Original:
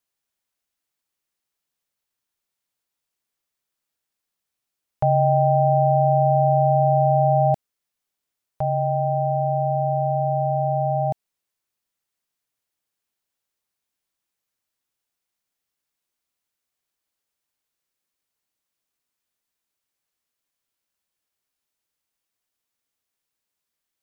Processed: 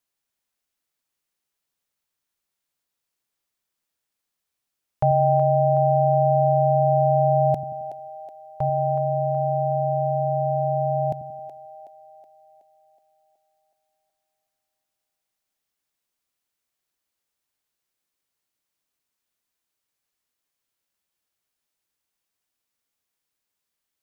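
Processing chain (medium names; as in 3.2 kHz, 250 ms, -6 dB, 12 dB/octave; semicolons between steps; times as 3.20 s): two-band feedback delay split 340 Hz, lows 89 ms, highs 372 ms, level -10 dB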